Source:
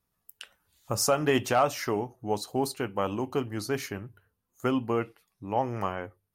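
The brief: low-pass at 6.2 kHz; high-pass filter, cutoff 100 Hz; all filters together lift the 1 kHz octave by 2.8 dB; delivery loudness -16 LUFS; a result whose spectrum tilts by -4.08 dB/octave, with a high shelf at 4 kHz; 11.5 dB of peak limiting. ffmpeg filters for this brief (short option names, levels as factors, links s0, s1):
-af "highpass=100,lowpass=6200,equalizer=f=1000:t=o:g=3.5,highshelf=f=4000:g=4.5,volume=7.08,alimiter=limit=0.708:level=0:latency=1"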